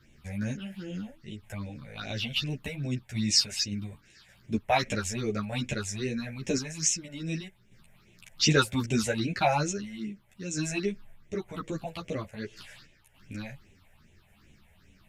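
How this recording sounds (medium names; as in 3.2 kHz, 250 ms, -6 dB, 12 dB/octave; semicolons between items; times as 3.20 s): phasing stages 6, 2.5 Hz, lowest notch 300–1300 Hz; random-step tremolo; a shimmering, thickened sound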